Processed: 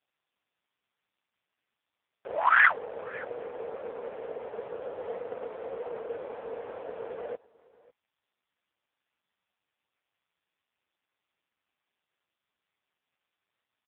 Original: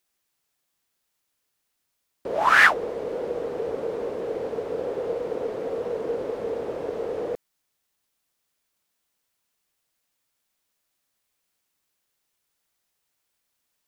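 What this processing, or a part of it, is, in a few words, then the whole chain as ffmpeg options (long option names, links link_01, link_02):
satellite phone: -filter_complex "[0:a]asplit=3[link_01][link_02][link_03];[link_01]afade=type=out:start_time=2.38:duration=0.02[link_04];[link_02]highpass=260,afade=type=in:start_time=2.38:duration=0.02,afade=type=out:start_time=3.29:duration=0.02[link_05];[link_03]afade=type=in:start_time=3.29:duration=0.02[link_06];[link_04][link_05][link_06]amix=inputs=3:normalize=0,bandreject=frequency=5900:width=14,asplit=3[link_07][link_08][link_09];[link_07]afade=type=out:start_time=3.92:duration=0.02[link_10];[link_08]lowpass=frequency=9500:width=0.5412,lowpass=frequency=9500:width=1.3066,afade=type=in:start_time=3.92:duration=0.02,afade=type=out:start_time=5.33:duration=0.02[link_11];[link_09]afade=type=in:start_time=5.33:duration=0.02[link_12];[link_10][link_11][link_12]amix=inputs=3:normalize=0,highpass=360,lowpass=3400,acrossover=split=510 6400:gain=0.2 1 0.158[link_13][link_14][link_15];[link_13][link_14][link_15]amix=inputs=3:normalize=0,aecho=1:1:551:0.075" -ar 8000 -c:a libopencore_amrnb -b:a 4750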